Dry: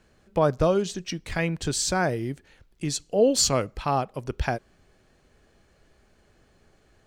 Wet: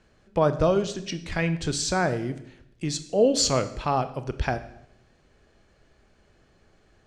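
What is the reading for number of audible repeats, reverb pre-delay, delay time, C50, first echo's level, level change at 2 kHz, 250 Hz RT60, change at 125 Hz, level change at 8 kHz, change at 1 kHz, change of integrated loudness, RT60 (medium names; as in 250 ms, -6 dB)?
no echo, 23 ms, no echo, 14.0 dB, no echo, 0.0 dB, 0.90 s, +1.0 dB, -2.0 dB, +0.5 dB, 0.0 dB, 0.75 s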